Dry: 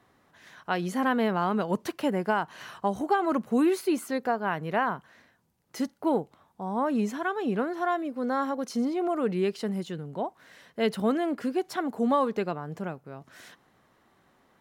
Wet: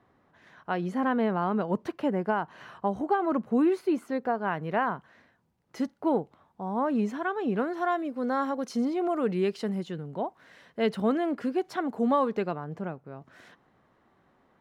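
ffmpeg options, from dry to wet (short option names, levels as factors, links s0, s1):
-af "asetnsamples=n=441:p=0,asendcmd='4.35 lowpass f 2500;7.57 lowpass f 6100;9.75 lowpass f 3400;12.64 lowpass f 1700',lowpass=f=1400:p=1"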